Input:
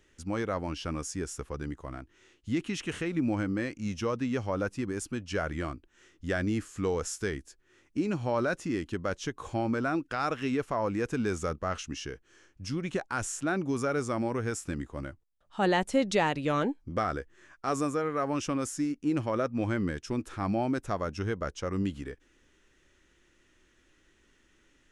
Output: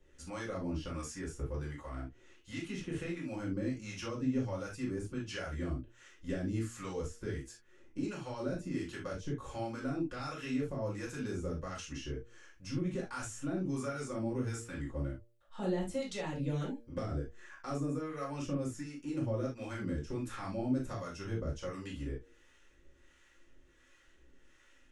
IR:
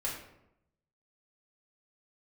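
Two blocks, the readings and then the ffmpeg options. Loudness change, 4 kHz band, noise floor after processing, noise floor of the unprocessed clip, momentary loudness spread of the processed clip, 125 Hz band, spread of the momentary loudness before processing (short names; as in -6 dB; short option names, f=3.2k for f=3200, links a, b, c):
-7.0 dB, -7.5 dB, -64 dBFS, -66 dBFS, 8 LU, -3.0 dB, 9 LU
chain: -filter_complex "[0:a]acrossover=split=340|3700[a][b][c];[a]acompressor=threshold=-32dB:ratio=4[d];[b]acompressor=threshold=-43dB:ratio=4[e];[c]acompressor=threshold=-48dB:ratio=4[f];[d][e][f]amix=inputs=3:normalize=0,acrossover=split=660[g][h];[g]aeval=exprs='val(0)*(1-0.7/2+0.7/2*cos(2*PI*1.4*n/s))':c=same[i];[h]aeval=exprs='val(0)*(1-0.7/2-0.7/2*cos(2*PI*1.4*n/s))':c=same[j];[i][j]amix=inputs=2:normalize=0,bandreject=f=117.1:t=h:w=4,bandreject=f=234.2:t=h:w=4,bandreject=f=351.3:t=h:w=4,bandreject=f=468.4:t=h:w=4,bandreject=f=585.5:t=h:w=4,bandreject=f=702.6:t=h:w=4[k];[1:a]atrim=start_sample=2205,afade=t=out:st=0.13:d=0.01,atrim=end_sample=6174[l];[k][l]afir=irnorm=-1:irlink=0"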